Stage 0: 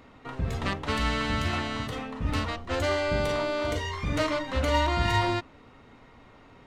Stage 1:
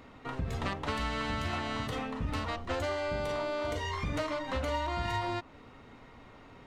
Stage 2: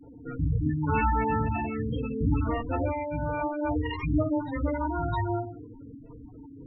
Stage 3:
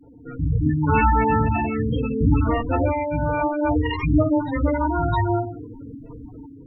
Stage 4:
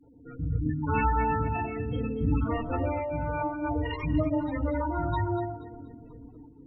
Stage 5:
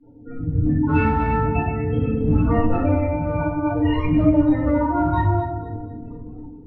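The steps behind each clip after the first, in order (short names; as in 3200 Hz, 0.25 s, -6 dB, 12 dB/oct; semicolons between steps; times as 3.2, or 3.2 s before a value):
dynamic EQ 820 Hz, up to +4 dB, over -38 dBFS, Q 1.1; compressor, threshold -30 dBFS, peak gain reduction 12 dB
rotary speaker horn 0.7 Hz, later 6.3 Hz, at 3.02; FDN reverb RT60 0.52 s, low-frequency decay 1.55×, high-frequency decay 0.85×, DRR -4 dB; spectral gate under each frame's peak -10 dB strong; gain +3 dB
AGC gain up to 7.5 dB
echo with dull and thin repeats by turns 0.12 s, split 880 Hz, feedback 58%, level -7 dB; gain -8.5 dB
in parallel at -4 dB: hard clip -22.5 dBFS, distortion -15 dB; on the sum: air absorption 220 m; shoebox room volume 110 m³, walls mixed, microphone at 1.7 m; gain -2.5 dB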